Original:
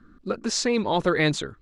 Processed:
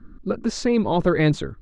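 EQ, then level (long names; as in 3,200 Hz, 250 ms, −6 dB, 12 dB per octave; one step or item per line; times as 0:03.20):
spectral tilt −2.5 dB per octave
0.0 dB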